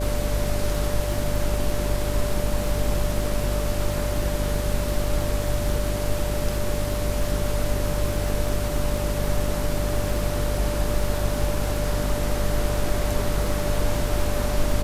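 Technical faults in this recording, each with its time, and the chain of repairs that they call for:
mains buzz 50 Hz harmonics 9 −27 dBFS
surface crackle 32 per second −28 dBFS
whistle 590 Hz −30 dBFS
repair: click removal
notch filter 590 Hz, Q 30
hum removal 50 Hz, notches 9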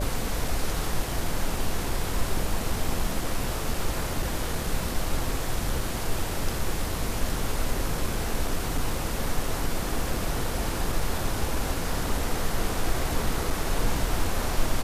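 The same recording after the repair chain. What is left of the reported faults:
none of them is left

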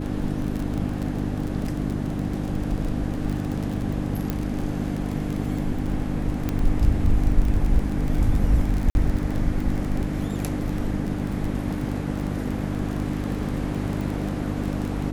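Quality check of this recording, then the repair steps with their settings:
surface crackle 21 per second −26 dBFS
mains hum 50 Hz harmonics 6 −28 dBFS
0:04.30: click −12 dBFS
0:06.49: click −12 dBFS
0:08.90–0:08.95: drop-out 51 ms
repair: click removal
hum removal 50 Hz, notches 6
repair the gap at 0:08.90, 51 ms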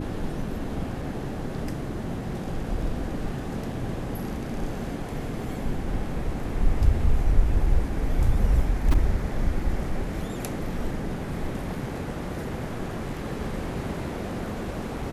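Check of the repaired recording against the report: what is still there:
none of them is left

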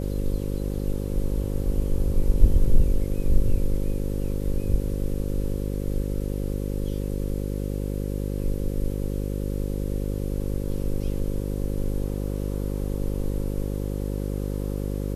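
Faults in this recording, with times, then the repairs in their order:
mains buzz 50 Hz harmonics 11 −28 dBFS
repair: hum removal 50 Hz, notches 11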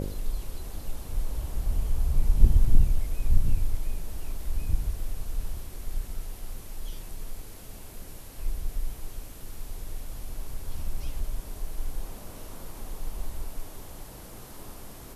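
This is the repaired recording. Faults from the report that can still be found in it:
none of them is left

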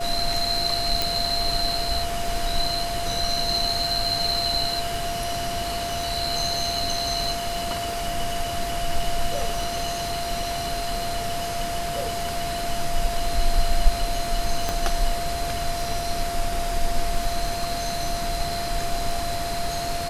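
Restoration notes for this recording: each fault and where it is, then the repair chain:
surface crackle 30 per second −32 dBFS
whistle 690 Hz −28 dBFS
0:01.02: click
0:14.69: click −9 dBFS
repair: click removal
notch filter 690 Hz, Q 30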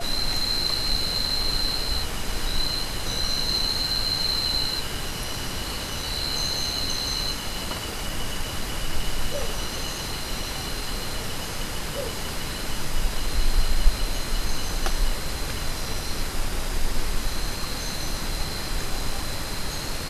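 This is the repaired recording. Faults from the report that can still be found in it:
none of them is left

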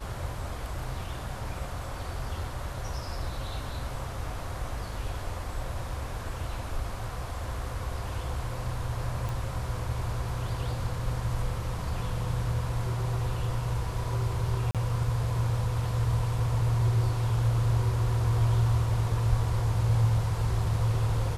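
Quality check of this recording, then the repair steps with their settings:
0:09.29: click
0:14.71–0:14.75: drop-out 37 ms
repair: click removal
repair the gap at 0:14.71, 37 ms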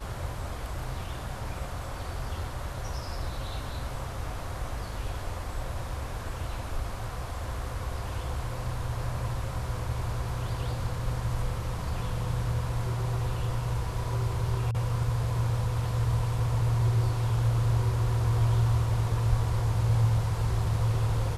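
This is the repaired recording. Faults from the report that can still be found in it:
none of them is left

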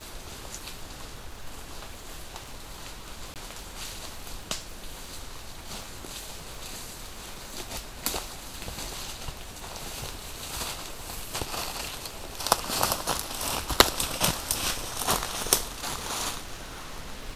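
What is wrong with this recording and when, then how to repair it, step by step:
surface crackle 28 per second −36 dBFS
0:03.34–0:03.36: drop-out 18 ms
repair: click removal
repair the gap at 0:03.34, 18 ms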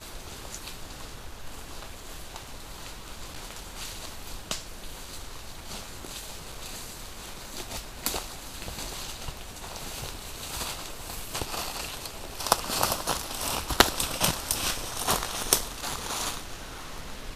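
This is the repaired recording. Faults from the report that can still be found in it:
none of them is left

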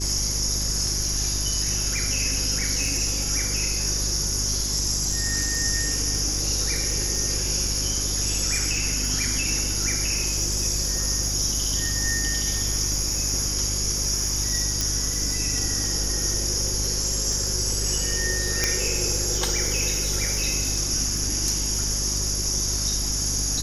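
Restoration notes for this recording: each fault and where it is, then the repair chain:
surface crackle 35 per second −28 dBFS
mains hum 50 Hz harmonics 8 −30 dBFS
0:14.81: click
0:18.64: click −5 dBFS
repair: click removal
hum removal 50 Hz, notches 8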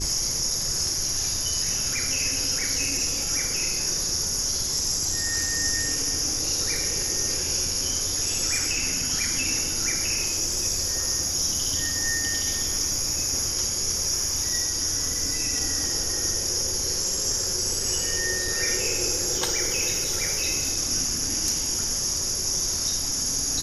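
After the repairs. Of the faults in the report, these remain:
0:14.81: click
0:18.64: click

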